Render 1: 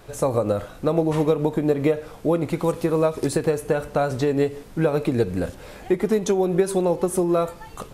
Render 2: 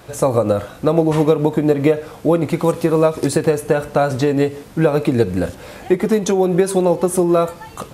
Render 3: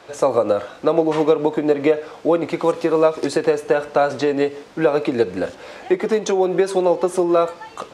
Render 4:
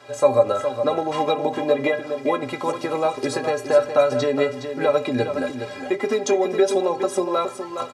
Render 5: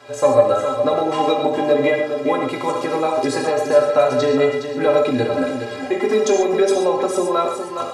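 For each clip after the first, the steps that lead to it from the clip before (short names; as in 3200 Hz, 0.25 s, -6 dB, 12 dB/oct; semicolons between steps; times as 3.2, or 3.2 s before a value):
HPF 64 Hz; notch 410 Hz, Q 13; gain +6 dB
three-band isolator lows -16 dB, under 280 Hz, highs -21 dB, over 7100 Hz
metallic resonator 120 Hz, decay 0.23 s, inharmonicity 0.03; echo 0.415 s -8.5 dB; gain +8.5 dB
in parallel at -8 dB: soft clip -12.5 dBFS, distortion -15 dB; on the sum: reverb, pre-delay 3 ms, DRR 2 dB; gain -1 dB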